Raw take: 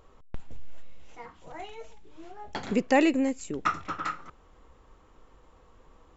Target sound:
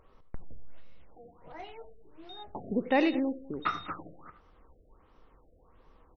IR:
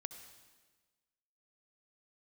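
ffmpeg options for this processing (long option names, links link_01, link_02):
-filter_complex "[0:a]asettb=1/sr,asplit=3[link_01][link_02][link_03];[link_01]atrim=end=2.294[link_04];[link_02]atrim=start=2.29:end=3.99,asetpts=PTS-STARTPTS,afade=type=in:duration=0.004:curve=qsin,afade=type=out:start_time=1.696:duration=0.004:curve=qsin,aeval=exprs='val(0)+0.00891*sin(2*PI*3700*n/s)':channel_layout=same[link_05];[link_03]atrim=start=3.986[link_06];[link_04][link_05]acrossfade=duration=0.004:curve1=hsin:curve2=qsin[link_07];[link_07][link_06]acrossfade=duration=0.004:curve1=qsin:curve2=hsin,asplit=2[link_08][link_09];[link_09]adelay=198.3,volume=-20dB,highshelf=frequency=4000:gain=-4.46[link_10];[link_08][link_10]amix=inputs=2:normalize=0[link_11];[1:a]atrim=start_sample=2205,atrim=end_sample=4410[link_12];[link_11][link_12]afir=irnorm=-1:irlink=0,afftfilt=real='re*lt(b*sr/1024,690*pow(6300/690,0.5+0.5*sin(2*PI*1.4*pts/sr)))':imag='im*lt(b*sr/1024,690*pow(6300/690,0.5+0.5*sin(2*PI*1.4*pts/sr)))':win_size=1024:overlap=0.75"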